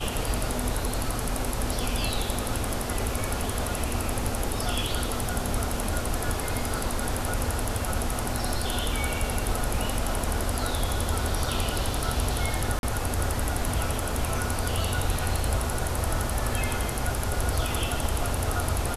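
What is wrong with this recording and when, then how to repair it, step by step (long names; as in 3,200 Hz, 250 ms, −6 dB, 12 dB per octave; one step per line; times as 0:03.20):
0:12.79–0:12.83: drop-out 41 ms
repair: repair the gap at 0:12.79, 41 ms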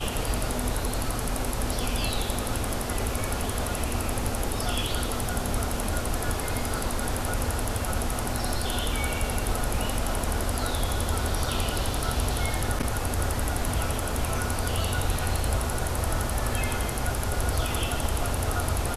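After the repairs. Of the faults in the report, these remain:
none of them is left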